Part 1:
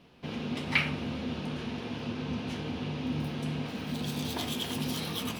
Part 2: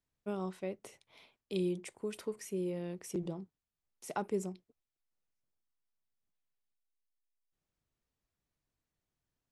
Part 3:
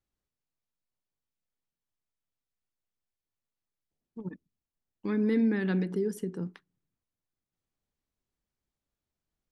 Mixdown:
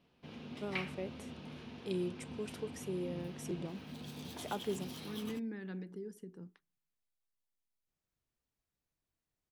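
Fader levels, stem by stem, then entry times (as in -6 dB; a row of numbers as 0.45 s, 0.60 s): -13.0 dB, -3.0 dB, -15.0 dB; 0.00 s, 0.35 s, 0.00 s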